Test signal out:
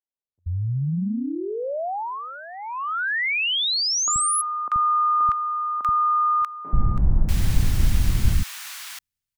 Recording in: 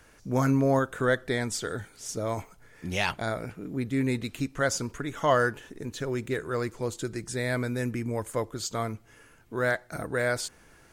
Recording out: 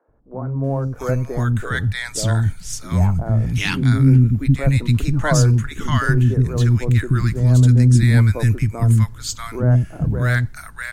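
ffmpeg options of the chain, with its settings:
ffmpeg -i in.wav -filter_complex "[0:a]asubboost=boost=11:cutoff=150,dynaudnorm=framelen=180:gausssize=11:maxgain=9dB,acrossover=split=310|1000[link_01][link_02][link_03];[link_01]adelay=80[link_04];[link_03]adelay=640[link_05];[link_04][link_02][link_05]amix=inputs=3:normalize=0" out.wav

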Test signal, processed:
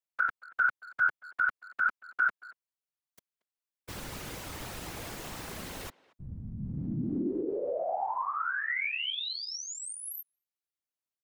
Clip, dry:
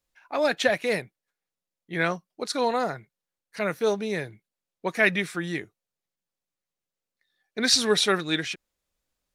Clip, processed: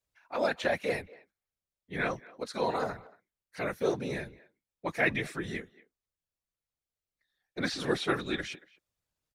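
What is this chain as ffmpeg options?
ffmpeg -i in.wav -filter_complex "[0:a]acrossover=split=3000[link_01][link_02];[link_02]acompressor=threshold=-35dB:ratio=4:attack=1:release=60[link_03];[link_01][link_03]amix=inputs=2:normalize=0,acrossover=split=170[link_04][link_05];[link_04]alimiter=level_in=10dB:limit=-24dB:level=0:latency=1,volume=-10dB[link_06];[link_06][link_05]amix=inputs=2:normalize=0,afftfilt=real='hypot(re,im)*cos(2*PI*random(0))':imag='hypot(re,im)*sin(2*PI*random(1))':win_size=512:overlap=0.75,asplit=2[link_07][link_08];[link_08]adelay=230,highpass=300,lowpass=3400,asoftclip=type=hard:threshold=-21.5dB,volume=-21dB[link_09];[link_07][link_09]amix=inputs=2:normalize=0" out.wav

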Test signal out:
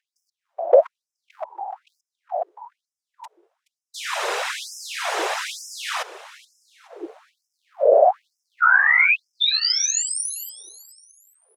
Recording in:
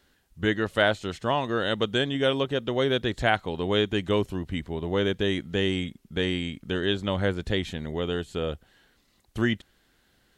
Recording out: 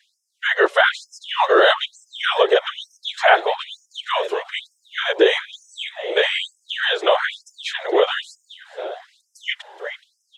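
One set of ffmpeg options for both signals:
ffmpeg -i in.wav -filter_complex "[0:a]lowpass=7900,highshelf=frequency=2900:gain=-10,bandreject=frequency=4400:width=17,dynaudnorm=framelen=150:gausssize=7:maxgain=4dB,asplit=2[link_01][link_02];[link_02]asplit=3[link_03][link_04][link_05];[link_03]adelay=423,afreqshift=120,volume=-18dB[link_06];[link_04]adelay=846,afreqshift=240,volume=-26.2dB[link_07];[link_05]adelay=1269,afreqshift=360,volume=-34.4dB[link_08];[link_06][link_07][link_08]amix=inputs=3:normalize=0[link_09];[link_01][link_09]amix=inputs=2:normalize=0,aeval=exprs='val(0)+0.00501*(sin(2*PI*50*n/s)+sin(2*PI*2*50*n/s)/2+sin(2*PI*3*50*n/s)/3+sin(2*PI*4*50*n/s)/4+sin(2*PI*5*50*n/s)/5)':channel_layout=same,afftfilt=real='hypot(re,im)*cos(2*PI*random(0))':imag='hypot(re,im)*sin(2*PI*random(1))':win_size=512:overlap=0.75,alimiter=level_in=21.5dB:limit=-1dB:release=50:level=0:latency=1,afftfilt=real='re*gte(b*sr/1024,340*pow(5100/340,0.5+0.5*sin(2*PI*1.1*pts/sr)))':imag='im*gte(b*sr/1024,340*pow(5100/340,0.5+0.5*sin(2*PI*1.1*pts/sr)))':win_size=1024:overlap=0.75,volume=-1dB" out.wav

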